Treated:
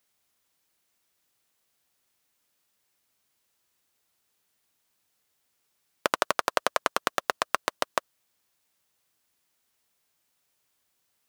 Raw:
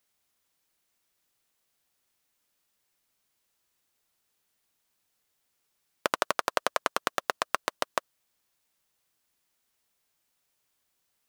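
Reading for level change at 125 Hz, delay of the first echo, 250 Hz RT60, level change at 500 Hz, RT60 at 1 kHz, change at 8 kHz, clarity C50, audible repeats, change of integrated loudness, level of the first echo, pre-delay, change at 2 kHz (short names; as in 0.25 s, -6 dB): +2.0 dB, none, none, +2.0 dB, none, +2.0 dB, none, none, +2.0 dB, none, none, +2.0 dB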